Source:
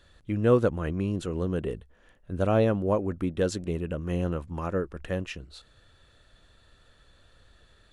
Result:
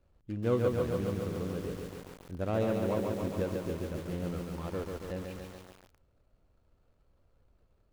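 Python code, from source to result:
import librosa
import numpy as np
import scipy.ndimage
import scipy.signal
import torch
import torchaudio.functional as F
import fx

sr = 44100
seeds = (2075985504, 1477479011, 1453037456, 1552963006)

y = scipy.signal.medfilt(x, 25)
y = fx.echo_crushed(y, sr, ms=140, feedback_pct=80, bits=7, wet_db=-3.5)
y = F.gain(torch.from_numpy(y), -8.0).numpy()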